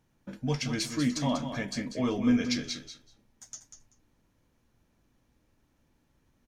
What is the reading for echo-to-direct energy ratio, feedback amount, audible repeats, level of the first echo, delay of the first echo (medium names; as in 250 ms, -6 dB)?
-8.5 dB, 16%, 2, -8.5 dB, 192 ms